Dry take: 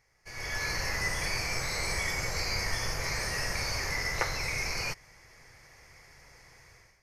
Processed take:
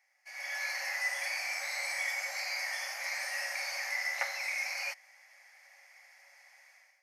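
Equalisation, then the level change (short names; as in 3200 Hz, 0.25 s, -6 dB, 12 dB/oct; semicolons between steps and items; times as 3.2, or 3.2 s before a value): rippled Chebyshev high-pass 540 Hz, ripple 9 dB; high shelf 8300 Hz +8 dB; 0.0 dB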